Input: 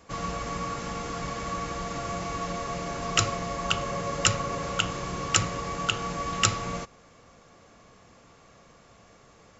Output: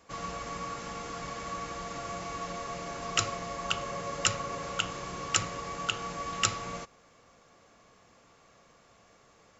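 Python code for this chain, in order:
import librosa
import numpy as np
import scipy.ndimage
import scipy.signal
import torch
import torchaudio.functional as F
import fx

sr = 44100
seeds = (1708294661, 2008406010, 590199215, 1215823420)

y = fx.low_shelf(x, sr, hz=270.0, db=-6.0)
y = y * 10.0 ** (-4.0 / 20.0)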